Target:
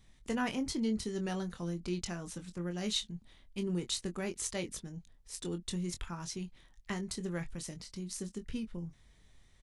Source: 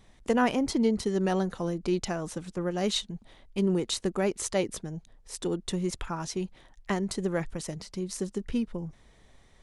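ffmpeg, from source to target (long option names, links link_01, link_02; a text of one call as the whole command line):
ffmpeg -i in.wav -filter_complex "[0:a]equalizer=frequency=610:width=0.54:gain=-9.5,asplit=2[link_01][link_02];[link_02]adelay=23,volume=-8dB[link_03];[link_01][link_03]amix=inputs=2:normalize=0,volume=-4dB" out.wav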